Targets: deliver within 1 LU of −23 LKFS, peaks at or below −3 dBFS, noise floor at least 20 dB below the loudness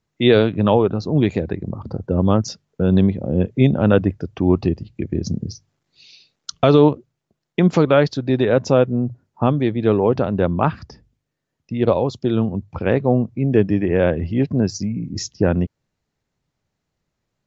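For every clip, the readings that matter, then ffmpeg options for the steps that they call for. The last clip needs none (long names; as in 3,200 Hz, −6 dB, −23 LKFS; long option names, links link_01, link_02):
integrated loudness −19.0 LKFS; sample peak −2.0 dBFS; target loudness −23.0 LKFS
→ -af "volume=-4dB"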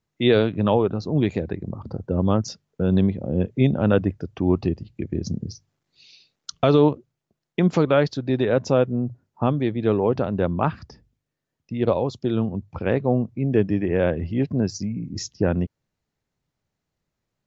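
integrated loudness −23.0 LKFS; sample peak −6.0 dBFS; background noise floor −82 dBFS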